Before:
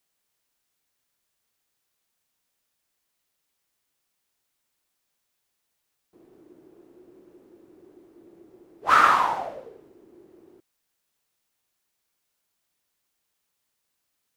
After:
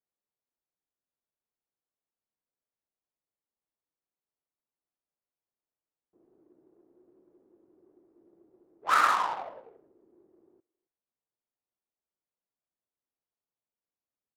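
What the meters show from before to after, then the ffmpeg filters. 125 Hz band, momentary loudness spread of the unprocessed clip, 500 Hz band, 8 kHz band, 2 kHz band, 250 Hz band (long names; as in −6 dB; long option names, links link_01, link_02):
can't be measured, 17 LU, −8.0 dB, −1.5 dB, −6.0 dB, −10.5 dB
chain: -filter_complex "[0:a]adynamicsmooth=sensitivity=3:basefreq=780,lowshelf=frequency=300:gain=-9.5,asplit=2[link_01][link_02];[link_02]adelay=270,highpass=300,lowpass=3400,asoftclip=type=hard:threshold=-14.5dB,volume=-24dB[link_03];[link_01][link_03]amix=inputs=2:normalize=0,volume=-5.5dB"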